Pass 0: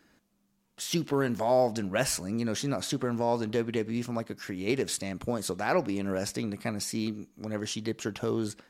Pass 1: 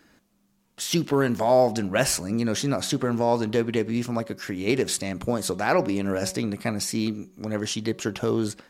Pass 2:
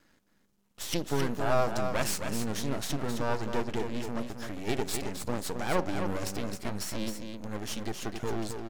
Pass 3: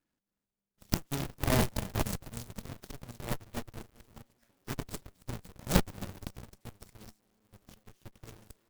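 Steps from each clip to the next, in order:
de-hum 187.2 Hz, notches 6; trim +5.5 dB
half-wave rectifier; delay 266 ms -6.5 dB; trim -3.5 dB
square wave that keeps the level; Chebyshev shaper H 3 -12 dB, 4 -23 dB, 7 -32 dB, 8 -44 dB, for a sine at -11.5 dBFS

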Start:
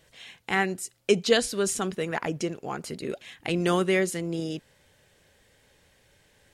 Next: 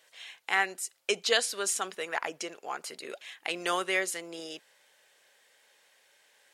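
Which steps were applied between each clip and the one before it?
high-pass 690 Hz 12 dB/octave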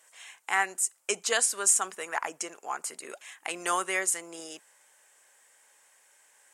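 graphic EQ 125/500/1000/4000/8000 Hz -6/-4/+5/-10/+12 dB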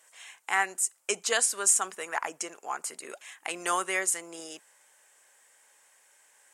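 no audible change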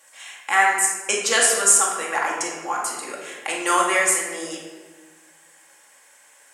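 simulated room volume 930 m³, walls mixed, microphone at 2.3 m; trim +5 dB

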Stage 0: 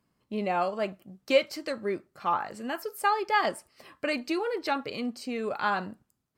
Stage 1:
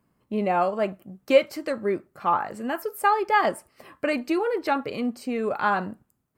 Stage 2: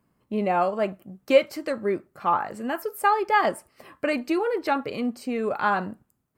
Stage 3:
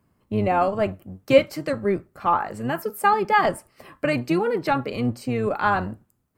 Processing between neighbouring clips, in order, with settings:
peaking EQ 4.6 kHz -9 dB 1.7 oct; trim +5.5 dB
no audible change
octave divider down 1 oct, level -3 dB; trim +2 dB

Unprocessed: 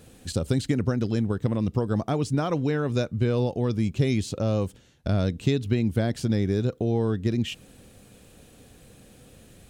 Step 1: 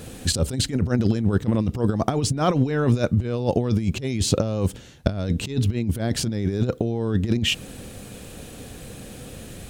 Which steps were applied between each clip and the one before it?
compressor with a negative ratio -28 dBFS, ratio -0.5; trim +7.5 dB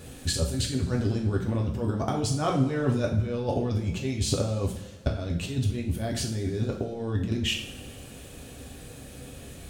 two-slope reverb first 0.49 s, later 2.1 s, from -17 dB, DRR -1 dB; trim -8 dB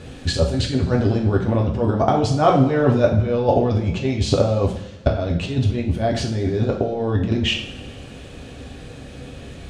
low-pass 4.6 kHz 12 dB/octave; dynamic bell 690 Hz, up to +7 dB, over -44 dBFS, Q 1.1; trim +7 dB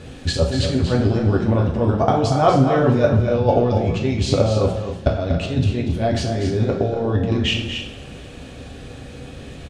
loudspeakers at several distances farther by 82 m -9 dB, 94 m -11 dB

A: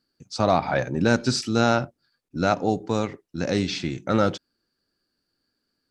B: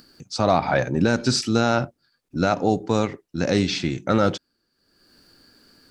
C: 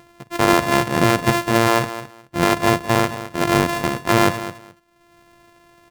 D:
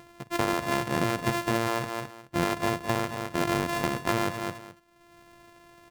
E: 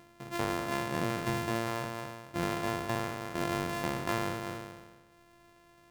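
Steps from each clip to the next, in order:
upward compressor, threshold -42 dBFS; loudness maximiser +9.5 dB; trim -6 dB
sorted samples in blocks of 128 samples; ten-band graphic EQ 125 Hz +5 dB, 500 Hz +4 dB, 1 kHz +4 dB, 2 kHz +4 dB; feedback delay 213 ms, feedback 17%, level -13 dB
compression 6:1, threshold -21 dBFS, peak gain reduction 11.5 dB; trim -2 dB
spectral sustain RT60 1.40 s; trim -7.5 dB

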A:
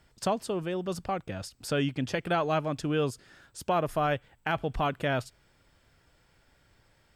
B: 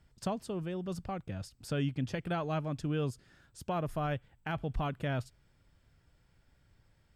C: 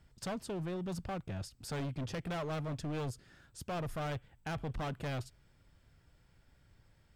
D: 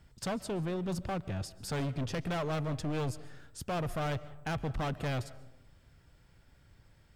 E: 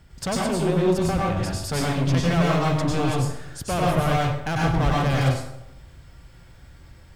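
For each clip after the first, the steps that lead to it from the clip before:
tone controls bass +9 dB, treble 0 dB; trim -8.5 dB
hard clipper -36.5 dBFS, distortion -6 dB; trim +1.5 dB
reverberation RT60 0.90 s, pre-delay 100 ms, DRR 18 dB; trim +4 dB
plate-style reverb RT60 0.59 s, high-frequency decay 0.8×, pre-delay 85 ms, DRR -4 dB; trim +7.5 dB

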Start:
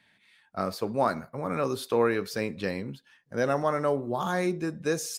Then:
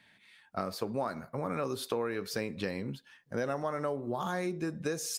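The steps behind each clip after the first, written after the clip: compression 5:1, threshold -32 dBFS, peak gain reduction 12 dB; trim +1.5 dB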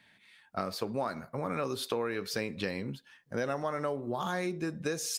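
dynamic bell 3.2 kHz, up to +4 dB, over -49 dBFS, Q 0.75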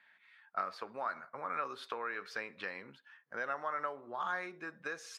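band-pass filter 1.4 kHz, Q 1.8; trim +2.5 dB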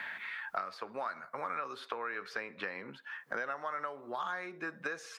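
three bands compressed up and down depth 100%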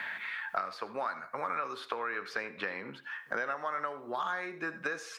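reverberation, pre-delay 69 ms, DRR 15 dB; trim +3 dB

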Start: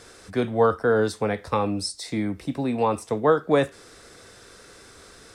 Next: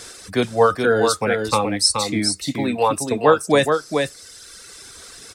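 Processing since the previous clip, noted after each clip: reverb removal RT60 1.9 s; treble shelf 2.6 kHz +11.5 dB; delay 425 ms -5 dB; trim +4 dB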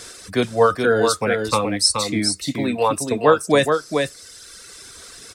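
band-stop 820 Hz, Q 12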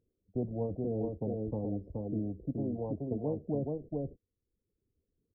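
gate -30 dBFS, range -39 dB; Gaussian low-pass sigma 24 samples; spectrum-flattening compressor 2:1; trim -8 dB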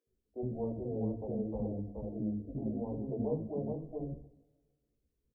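bands offset in time highs, lows 70 ms, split 320 Hz; two-slope reverb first 0.66 s, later 1.8 s, from -18 dB, DRR 6.5 dB; chorus voices 6, 1.3 Hz, delay 16 ms, depth 3 ms; trim +1.5 dB

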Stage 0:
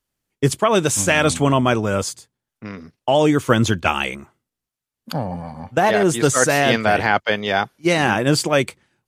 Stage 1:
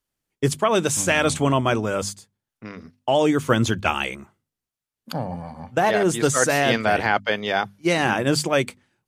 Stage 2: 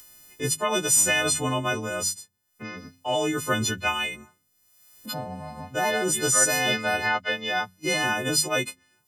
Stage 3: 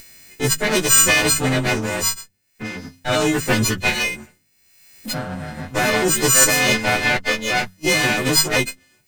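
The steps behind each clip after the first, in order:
hum notches 50/100/150/200/250 Hz; trim -3 dB
partials quantised in pitch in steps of 3 st; upward compressor, threshold -22 dBFS; trim -7 dB
comb filter that takes the minimum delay 0.45 ms; trim +8.5 dB

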